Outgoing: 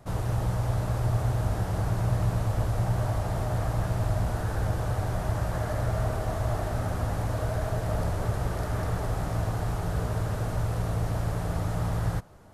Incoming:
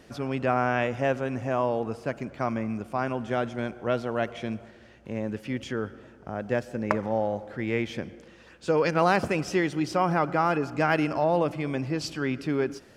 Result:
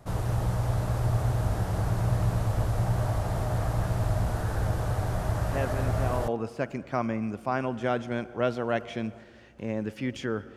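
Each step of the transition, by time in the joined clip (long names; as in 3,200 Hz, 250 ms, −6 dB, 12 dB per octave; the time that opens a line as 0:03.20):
outgoing
0:05.46: mix in incoming from 0:00.93 0.82 s −6.5 dB
0:06.28: continue with incoming from 0:01.75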